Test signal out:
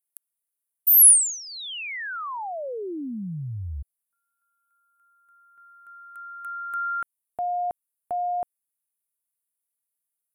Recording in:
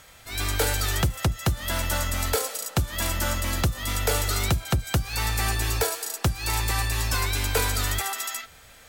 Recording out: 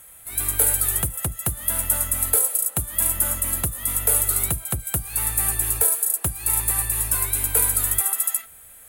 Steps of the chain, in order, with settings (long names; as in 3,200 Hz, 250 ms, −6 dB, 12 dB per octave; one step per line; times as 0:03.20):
high shelf with overshoot 7,500 Hz +13.5 dB, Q 3
level −5 dB